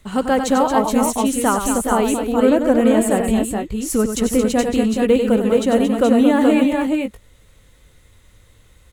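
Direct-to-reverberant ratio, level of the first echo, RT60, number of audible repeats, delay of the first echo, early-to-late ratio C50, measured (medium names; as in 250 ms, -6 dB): no reverb, -8.0 dB, no reverb, 3, 95 ms, no reverb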